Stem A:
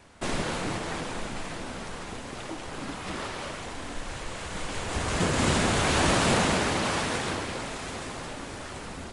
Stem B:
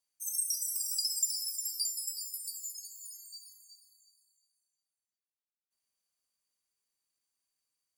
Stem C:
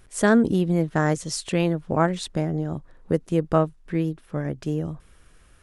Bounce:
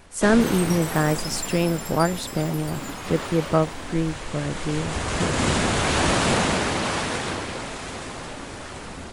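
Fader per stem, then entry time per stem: +2.5, -3.0, 0.0 dB; 0.00, 0.20, 0.00 s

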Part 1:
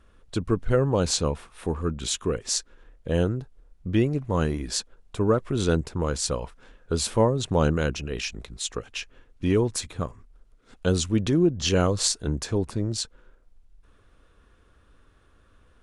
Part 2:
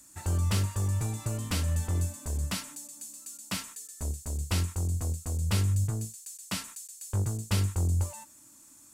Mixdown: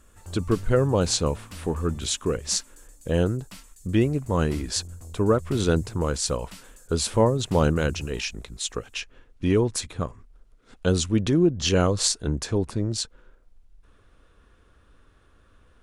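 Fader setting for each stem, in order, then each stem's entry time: +1.0, -11.0 dB; 0.00, 0.00 s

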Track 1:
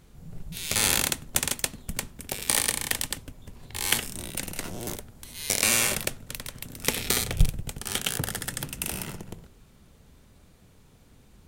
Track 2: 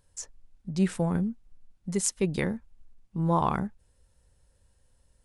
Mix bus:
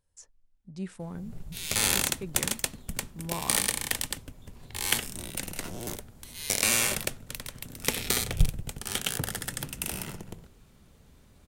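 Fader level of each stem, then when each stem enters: -2.0, -11.5 dB; 1.00, 0.00 s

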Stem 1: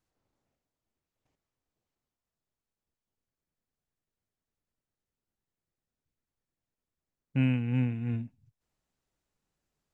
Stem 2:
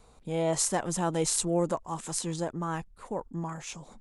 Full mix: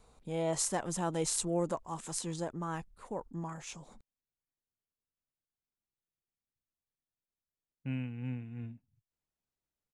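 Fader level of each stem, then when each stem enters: -10.5, -5.0 dB; 0.50, 0.00 s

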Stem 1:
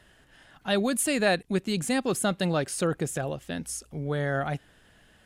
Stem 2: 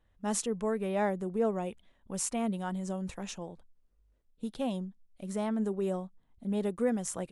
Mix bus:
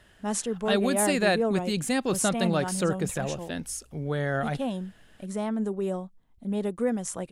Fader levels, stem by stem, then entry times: 0.0, +2.5 dB; 0.00, 0.00 s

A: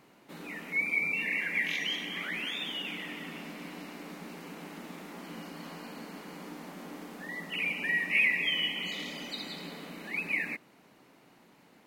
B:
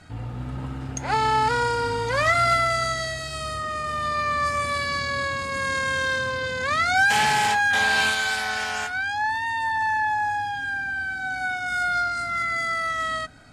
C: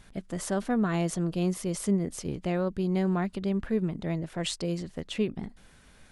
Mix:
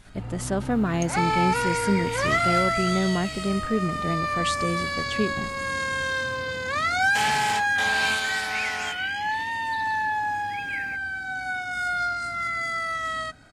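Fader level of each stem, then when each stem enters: -5.5, -2.5, +2.5 dB; 0.40, 0.05, 0.00 s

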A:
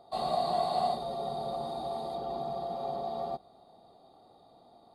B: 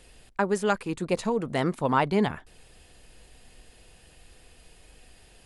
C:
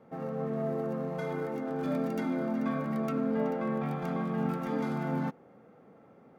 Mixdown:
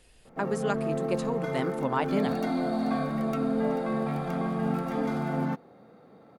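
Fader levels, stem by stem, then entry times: -7.5, -5.5, +2.5 dB; 2.10, 0.00, 0.25 s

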